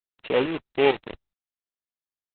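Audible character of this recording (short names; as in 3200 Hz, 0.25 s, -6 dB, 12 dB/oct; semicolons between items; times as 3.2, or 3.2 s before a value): a buzz of ramps at a fixed pitch in blocks of 16 samples; tremolo saw up 2.2 Hz, depth 75%; a quantiser's noise floor 6-bit, dither none; Opus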